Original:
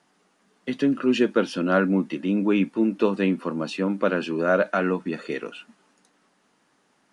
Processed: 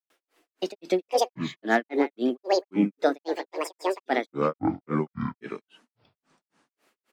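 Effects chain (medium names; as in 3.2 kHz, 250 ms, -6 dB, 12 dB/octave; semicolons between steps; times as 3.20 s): delay 232 ms -9.5 dB; granulator 216 ms, grains 3.7 per s, pitch spread up and down by 12 st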